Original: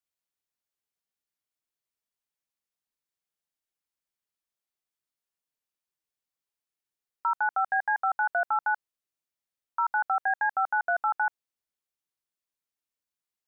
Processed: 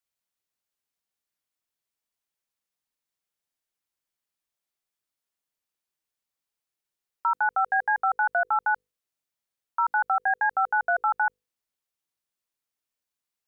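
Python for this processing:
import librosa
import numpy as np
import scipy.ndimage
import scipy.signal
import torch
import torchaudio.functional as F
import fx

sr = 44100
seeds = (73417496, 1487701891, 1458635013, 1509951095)

y = fx.hum_notches(x, sr, base_hz=50, count=10)
y = y * 10.0 ** (2.5 / 20.0)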